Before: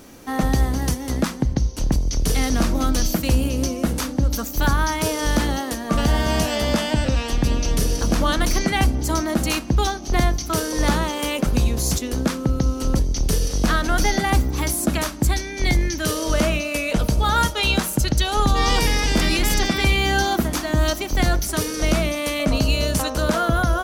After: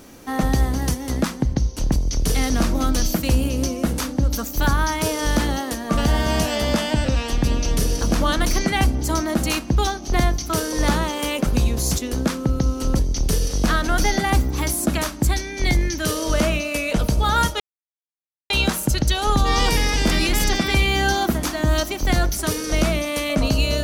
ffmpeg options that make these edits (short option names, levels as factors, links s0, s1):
-filter_complex "[0:a]asplit=2[s0][s1];[s0]atrim=end=17.6,asetpts=PTS-STARTPTS,afade=t=out:st=17.596:d=0.004:c=hsin,apad=pad_dur=0.9[s2];[s1]atrim=start=17.6,asetpts=PTS-STARTPTS,afade=t=in:d=0.004:c=hsin[s3];[s2][s3]concat=n=2:v=0:a=1"